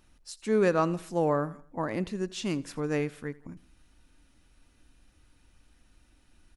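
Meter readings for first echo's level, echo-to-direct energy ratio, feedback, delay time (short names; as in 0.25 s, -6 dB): -21.0 dB, -20.0 dB, 47%, 83 ms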